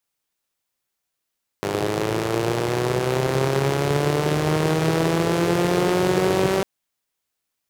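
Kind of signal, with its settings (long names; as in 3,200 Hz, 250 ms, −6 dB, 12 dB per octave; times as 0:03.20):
pulse-train model of a four-cylinder engine, changing speed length 5.00 s, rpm 3,000, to 5,800, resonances 150/370 Hz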